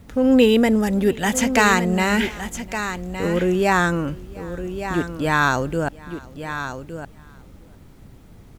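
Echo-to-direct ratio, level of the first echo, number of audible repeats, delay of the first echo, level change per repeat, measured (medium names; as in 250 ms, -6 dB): -10.0 dB, -23.5 dB, 3, 701 ms, no regular repeats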